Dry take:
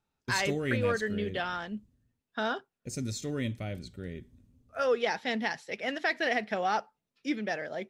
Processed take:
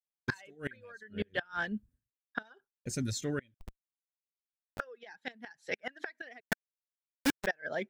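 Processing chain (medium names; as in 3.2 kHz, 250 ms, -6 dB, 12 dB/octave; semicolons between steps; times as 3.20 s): inverted gate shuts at -22 dBFS, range -24 dB; 6.40–7.47 s: companded quantiser 2-bit; peaking EQ 1.6 kHz +10.5 dB 0.32 oct; 3.54–4.80 s: Schmitt trigger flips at -28.5 dBFS; reverb removal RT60 0.67 s; expander -59 dBFS; trim +1 dB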